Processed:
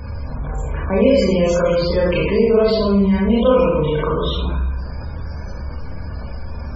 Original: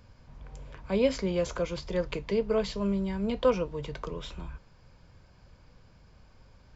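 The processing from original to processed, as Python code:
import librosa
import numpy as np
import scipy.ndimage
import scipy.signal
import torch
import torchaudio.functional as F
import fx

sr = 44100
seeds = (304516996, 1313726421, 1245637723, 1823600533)

y = fx.peak_eq(x, sr, hz=65.0, db=10.0, octaves=0.53)
y = fx.rev_schroeder(y, sr, rt60_s=0.81, comb_ms=27, drr_db=-7.5)
y = fx.spec_topn(y, sr, count=64)
y = fx.env_flatten(y, sr, amount_pct=50)
y = y * 10.0 ** (2.5 / 20.0)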